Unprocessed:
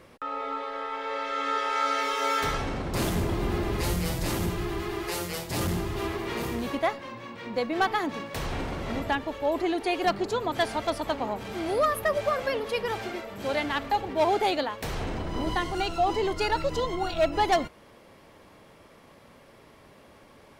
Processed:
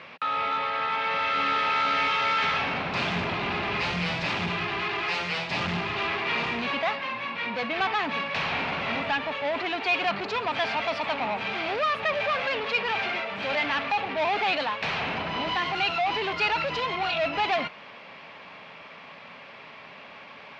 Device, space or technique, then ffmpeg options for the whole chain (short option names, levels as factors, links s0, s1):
overdrive pedal into a guitar cabinet: -filter_complex "[0:a]asettb=1/sr,asplit=3[s0][s1][s2];[s0]atrim=end=1.344[s3];[s1]atrim=start=1.34:end=2.08,asetpts=PTS-STARTPTS,afade=t=in:d=0.004:c=qsin,afade=t=out:st=0.736:d=0.004:c=qsin,equalizer=f=220:t=o:w=1.4:g=11[s4];[s2]atrim=start=2.076[s5];[s3][s4]acrossfade=d=0.004:c1=hsin:c2=qsin[s6];[s6][s5]acrossfade=d=0.004:c1=qsin:c2=hsin,asplit=2[s7][s8];[s8]highpass=f=720:p=1,volume=14.1,asoftclip=type=tanh:threshold=0.211[s9];[s7][s9]amix=inputs=2:normalize=0,lowpass=f=6900:p=1,volume=0.501,highpass=82,equalizer=f=170:t=q:w=4:g=5,equalizer=f=340:t=q:w=4:g=-10,equalizer=f=500:t=q:w=4:g=-5,equalizer=f=2500:t=q:w=4:g=8,lowpass=f=4400:w=0.5412,lowpass=f=4400:w=1.3066,volume=0.531"